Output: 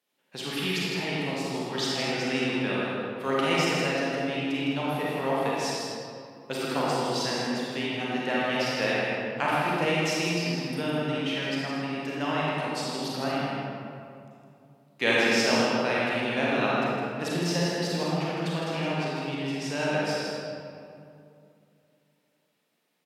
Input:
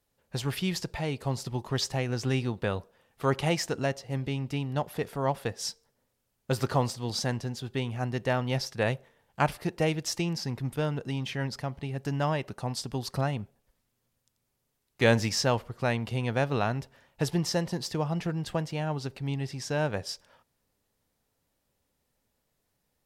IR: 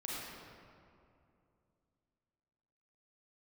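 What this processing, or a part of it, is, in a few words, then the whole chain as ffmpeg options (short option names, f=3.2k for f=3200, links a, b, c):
PA in a hall: -filter_complex "[0:a]highpass=f=180:w=0.5412,highpass=f=180:w=1.3066,equalizer=f=2.7k:t=o:w=1.3:g=8,aecho=1:1:159:0.501[a];[1:a]atrim=start_sample=2205[b];[a][b]afir=irnorm=-1:irlink=0"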